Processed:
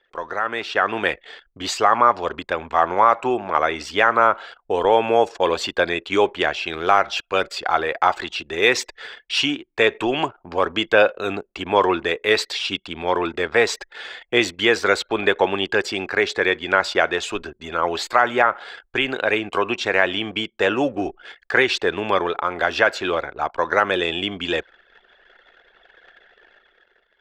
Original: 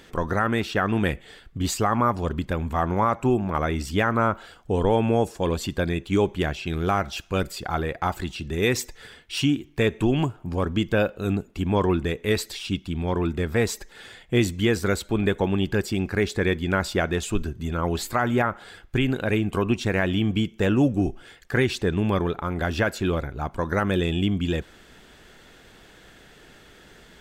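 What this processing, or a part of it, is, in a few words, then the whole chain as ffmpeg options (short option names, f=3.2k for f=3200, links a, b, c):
voice memo with heavy noise removal: -filter_complex "[0:a]acrossover=split=420 5900:gain=0.0631 1 0.1[a][b][c];[a][b][c]amix=inputs=3:normalize=0,anlmdn=0.01,dynaudnorm=f=110:g=13:m=12dB"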